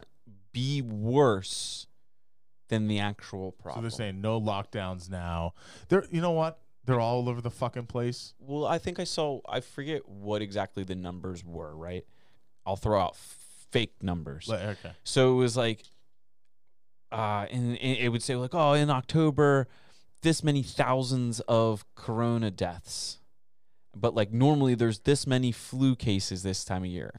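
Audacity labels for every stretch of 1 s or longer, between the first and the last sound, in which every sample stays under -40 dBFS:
15.840000	17.120000	silence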